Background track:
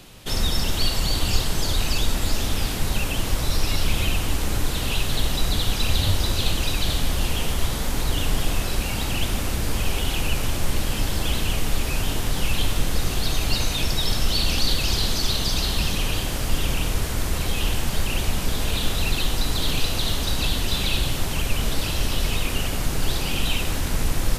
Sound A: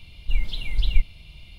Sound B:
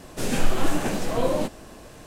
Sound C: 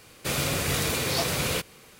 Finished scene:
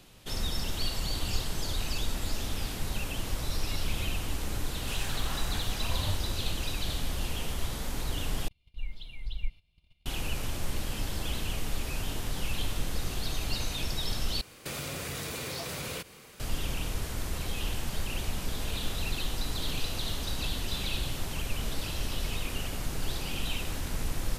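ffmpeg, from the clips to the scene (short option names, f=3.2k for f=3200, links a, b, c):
-filter_complex "[0:a]volume=-9.5dB[a];[2:a]highpass=f=850:w=0.5412,highpass=f=850:w=1.3066[b];[1:a]agate=range=-13dB:threshold=-41dB:ratio=16:release=100:detection=peak[c];[3:a]acompressor=threshold=-33dB:ratio=6:attack=3.2:release=140:knee=1:detection=peak[d];[a]asplit=3[e][f][g];[e]atrim=end=8.484[h];[c]atrim=end=1.58,asetpts=PTS-STARTPTS,volume=-14dB[i];[f]atrim=start=10.056:end=14.414[j];[d]atrim=end=1.99,asetpts=PTS-STARTPTS,volume=-0.5dB[k];[g]atrim=start=16.396[l];[b]atrim=end=2.06,asetpts=PTS-STARTPTS,volume=-9dB,afade=t=in:d=0.004:c=hsin,afade=t=out:st=2.056:d=0.004:c=hsin,adelay=206829S[m];[h][i]acrossfade=d=0.004:c1=hsin:c2=hsin[n];[n][j]acrossfade=d=0.004:c1=hsin:c2=hsin[o];[o][k]acrossfade=d=0.004:c1=hsin:c2=hsin[p];[p][l]acrossfade=d=0.004:c1=hsin:c2=hsin[q];[q][m]amix=inputs=2:normalize=0"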